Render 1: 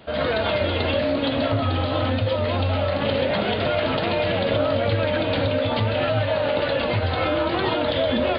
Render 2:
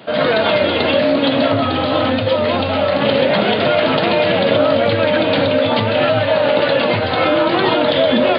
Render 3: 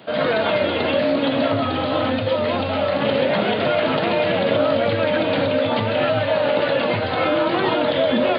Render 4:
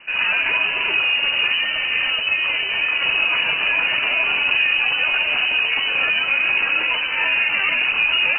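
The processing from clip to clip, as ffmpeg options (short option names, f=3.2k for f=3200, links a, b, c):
-af "highpass=f=130:w=0.5412,highpass=f=130:w=1.3066,volume=8dB"
-filter_complex "[0:a]acrossover=split=3300[a][b];[b]acompressor=threshold=-32dB:ratio=4:attack=1:release=60[c];[a][c]amix=inputs=2:normalize=0,volume=-4.5dB"
-af "lowpass=f=2.6k:t=q:w=0.5098,lowpass=f=2.6k:t=q:w=0.6013,lowpass=f=2.6k:t=q:w=0.9,lowpass=f=2.6k:t=q:w=2.563,afreqshift=-3100"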